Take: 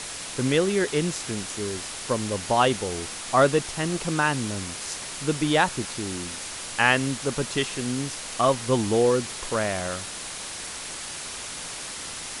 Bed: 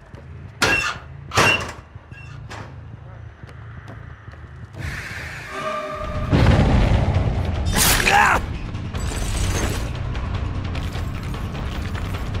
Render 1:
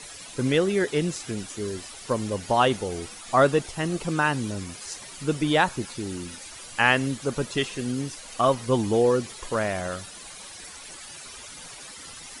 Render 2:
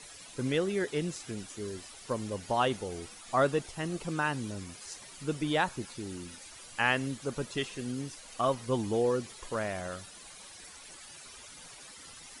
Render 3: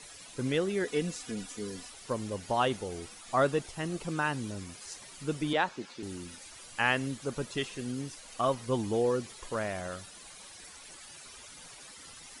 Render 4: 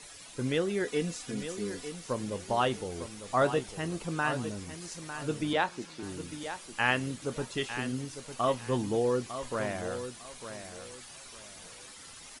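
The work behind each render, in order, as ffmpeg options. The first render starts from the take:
-af "afftdn=nr=12:nf=-36"
-af "volume=0.422"
-filter_complex "[0:a]asettb=1/sr,asplit=3[s0][s1][s2];[s0]atrim=end=0.854[s3];[s1]atrim=start=0.85:end=1.9,asetpts=PTS-STARTPTS,afade=t=in:d=0.004:c=qsin,afade=t=out:st=1.046:d=0.004:c=qsin,aecho=1:1:4.1:0.65,atrim=end_sample=46305[s4];[s2]atrim=start=1.896[s5];[s3][s4]acrossfade=d=0.004:c1=hsin:c2=qsin[s6];[s6][s5]acrossfade=d=0.004:c1=qsin:c2=hsin,asettb=1/sr,asplit=3[s7][s8][s9];[s7]atrim=end=5.534[s10];[s8]atrim=start=5.53:end=6.03,asetpts=PTS-STARTPTS,afade=t=in:d=0.004:c=qsin,afade=t=out:st=0.496:d=0.004:c=qsin,acrossover=split=180 6400:gain=0.112 1 0.126[s11][s12][s13];[s11][s12][s13]amix=inputs=3:normalize=0[s14];[s9]atrim=start=6.026[s15];[s10][s14]acrossfade=d=0.004:c1=hsin:c2=qsin[s16];[s16][s15]acrossfade=d=0.004:c1=qsin:c2=hsin"
-filter_complex "[0:a]asplit=2[s0][s1];[s1]adelay=24,volume=0.2[s2];[s0][s2]amix=inputs=2:normalize=0,aecho=1:1:902|1804|2706:0.299|0.0776|0.0202"

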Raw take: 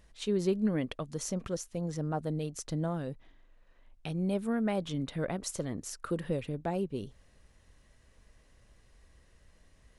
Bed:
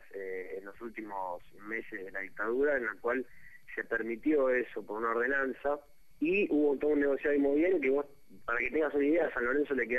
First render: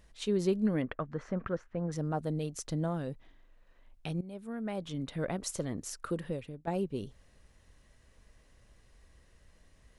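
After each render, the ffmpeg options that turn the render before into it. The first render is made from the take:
-filter_complex "[0:a]asettb=1/sr,asplit=3[s0][s1][s2];[s0]atrim=end=0.824[s3];[s1]atrim=start=0.82:end=1.92,asetpts=PTS-STARTPTS,afade=t=in:d=0.004:c=qsin,afade=t=out:st=1.096:d=0.004:c=qsin,lowpass=f=1600:t=q:w=2.6[s4];[s2]atrim=start=1.916[s5];[s3][s4]acrossfade=d=0.004:c1=hsin:c2=qsin[s6];[s6][s5]acrossfade=d=0.004:c1=qsin:c2=hsin,asplit=3[s7][s8][s9];[s7]atrim=end=4.21,asetpts=PTS-STARTPTS,afade=t=out:st=4.206:d=0.004:c=hsin:silence=0.133352[s10];[s8]atrim=start=4.21:end=6.67,asetpts=PTS-STARTPTS,afade=t=in:d=1.13:silence=0.133352,afade=t=out:st=1.81:d=0.65:silence=0.223872[s11];[s9]atrim=start=6.67,asetpts=PTS-STARTPTS,afade=t=in:d=0.004:c=hsin:silence=0.223872[s12];[s10][s11][s12]concat=n=3:v=0:a=1"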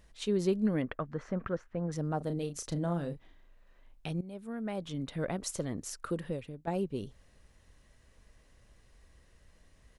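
-filter_complex "[0:a]asplit=3[s0][s1][s2];[s0]afade=t=out:st=2.2:d=0.02[s3];[s1]asplit=2[s4][s5];[s5]adelay=35,volume=0.376[s6];[s4][s6]amix=inputs=2:normalize=0,afade=t=in:st=2.2:d=0.02,afade=t=out:st=4.09:d=0.02[s7];[s2]afade=t=in:st=4.09:d=0.02[s8];[s3][s7][s8]amix=inputs=3:normalize=0"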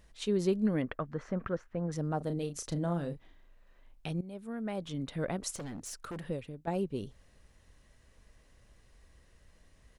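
-filter_complex "[0:a]asettb=1/sr,asplit=3[s0][s1][s2];[s0]atrim=end=5.554[s3];[s1]atrim=start=5.55:end=6.24,asetpts=PTS-STARTPTS,afade=t=in:d=0.004:c=qsin,afade=t=out:st=0.686:d=0.004:c=qsin,asoftclip=type=hard:threshold=0.0133[s4];[s2]atrim=start=6.236[s5];[s3][s4]acrossfade=d=0.004:c1=hsin:c2=qsin[s6];[s6][s5]acrossfade=d=0.004:c1=qsin:c2=hsin"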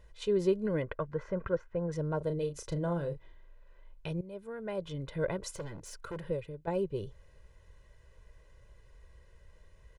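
-af "highshelf=f=3500:g=-9,aecho=1:1:2:0.78"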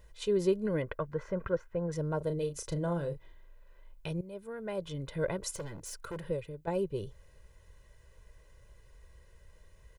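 -af "highshelf=f=7900:g=10.5"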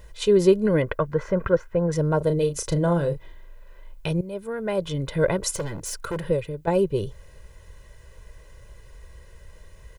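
-af "volume=3.55"

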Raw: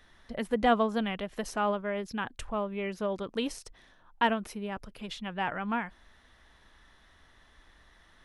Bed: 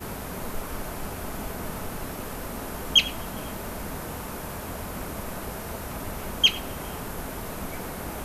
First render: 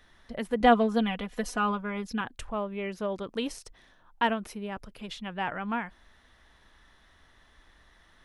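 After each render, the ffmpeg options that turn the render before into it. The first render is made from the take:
-filter_complex "[0:a]asettb=1/sr,asplit=3[s0][s1][s2];[s0]atrim=end=0.604[s3];[s1]atrim=start=0.6:end=2.21,asetpts=PTS-STARTPTS,afade=t=in:d=0.004:c=qsin,afade=t=out:st=1.606:d=0.004:c=qsin,aecho=1:1:4.1:0.78,atrim=end_sample=71001[s4];[s2]atrim=start=2.206[s5];[s3][s4]acrossfade=d=0.004:c1=hsin:c2=qsin[s6];[s6][s5]acrossfade=d=0.004:c1=qsin:c2=hsin"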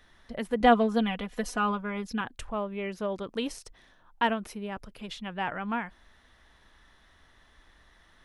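-af anull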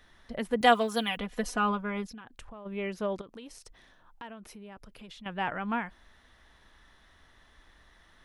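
-filter_complex "[0:a]asettb=1/sr,asplit=3[s0][s1][s2];[s0]atrim=end=0.614[s3];[s1]atrim=start=0.61:end=1.17,asetpts=PTS-STARTPTS,afade=t=in:d=0.004:c=qsin,afade=t=out:st=0.556:d=0.004:c=qsin,aemphasis=mode=production:type=riaa[s4];[s2]atrim=start=1.166[s5];[s3][s4]acrossfade=d=0.004:c1=hsin:c2=qsin[s6];[s6][s5]acrossfade=d=0.004:c1=qsin:c2=hsin,asplit=3[s7][s8][s9];[s7]afade=t=out:st=2.06:d=0.02[s10];[s8]acompressor=threshold=0.00708:ratio=8:attack=3.2:release=140:knee=1:detection=peak,afade=t=in:st=2.06:d=0.02,afade=t=out:st=2.65:d=0.02[s11];[s9]afade=t=in:st=2.65:d=0.02[s12];[s10][s11][s12]amix=inputs=3:normalize=0,asettb=1/sr,asplit=3[s13][s14][s15];[s13]atrim=end=3.214[s16];[s14]atrim=start=3.21:end=5.26,asetpts=PTS-STARTPTS,afade=t=in:d=0.004:c=qsin,afade=t=out:st=2.046:d=0.004:c=qsin,acompressor=threshold=0.00447:ratio=3:attack=3.2:release=140:knee=1:detection=peak[s17];[s15]atrim=start=5.256[s18];[s16][s17]acrossfade=d=0.004:c1=hsin:c2=qsin[s19];[s19][s18]acrossfade=d=0.004:c1=qsin:c2=hsin"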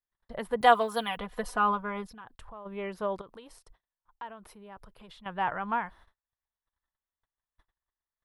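-af "equalizer=f=250:t=o:w=0.67:g=-8,equalizer=f=1000:t=o:w=0.67:g=6,equalizer=f=2500:t=o:w=0.67:g=-5,equalizer=f=6300:t=o:w=0.67:g=-9,agate=range=0.01:threshold=0.00224:ratio=16:detection=peak"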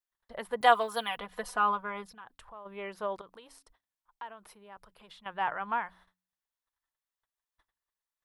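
-af "lowshelf=f=340:g=-11,bandreject=f=91.72:t=h:w=4,bandreject=f=183.44:t=h:w=4,bandreject=f=275.16:t=h:w=4"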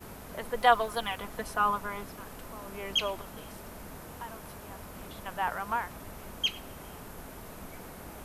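-filter_complex "[1:a]volume=0.299[s0];[0:a][s0]amix=inputs=2:normalize=0"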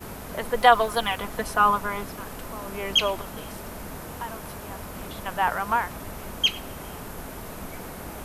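-af "volume=2.37,alimiter=limit=0.708:level=0:latency=1"

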